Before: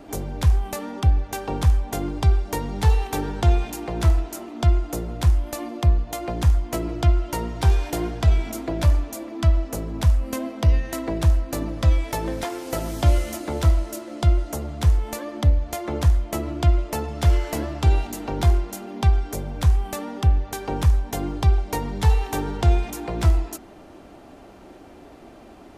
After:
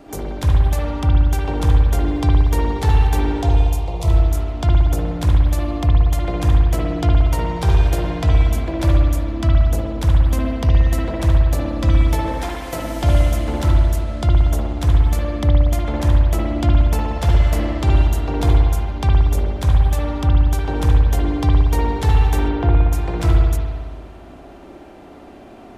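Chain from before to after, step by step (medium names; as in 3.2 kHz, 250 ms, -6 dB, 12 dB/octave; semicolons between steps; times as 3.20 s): 1.57–2.66 s: crackle 360 per s -48 dBFS; 3.42–4.08 s: static phaser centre 650 Hz, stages 4; 22.48–22.92 s: low-pass 1.9 kHz 12 dB/octave; spring tank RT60 1.6 s, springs 58 ms, chirp 20 ms, DRR -2.5 dB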